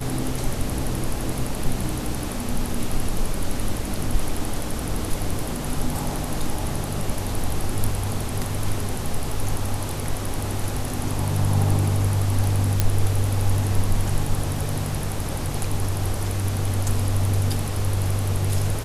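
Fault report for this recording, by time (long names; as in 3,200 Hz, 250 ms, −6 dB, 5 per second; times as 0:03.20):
0:12.80: click −4 dBFS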